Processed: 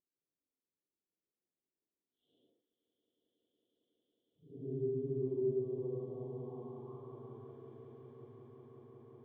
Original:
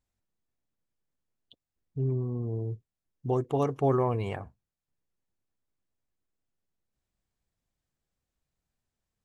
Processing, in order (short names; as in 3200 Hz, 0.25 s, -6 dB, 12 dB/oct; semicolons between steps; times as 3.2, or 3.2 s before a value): Paulstretch 5×, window 0.10 s, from 1.05; on a send: swelling echo 0.183 s, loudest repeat 8, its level -10 dB; on the sum: band-pass sweep 360 Hz -> 1700 Hz, 5.38–7.74; gain -1 dB